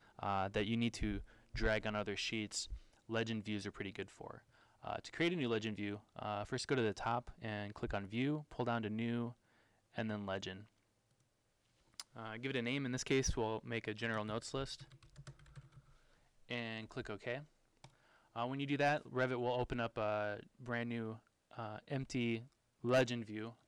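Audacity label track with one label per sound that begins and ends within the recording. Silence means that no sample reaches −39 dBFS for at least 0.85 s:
12.000000	14.740000	sound
16.510000	17.380000	sound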